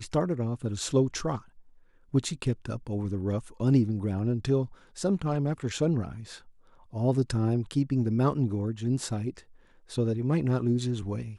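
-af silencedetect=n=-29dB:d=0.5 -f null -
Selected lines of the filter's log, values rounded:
silence_start: 1.37
silence_end: 2.14 | silence_duration: 0.77
silence_start: 6.09
silence_end: 6.96 | silence_duration: 0.87
silence_start: 9.30
silence_end: 9.97 | silence_duration: 0.67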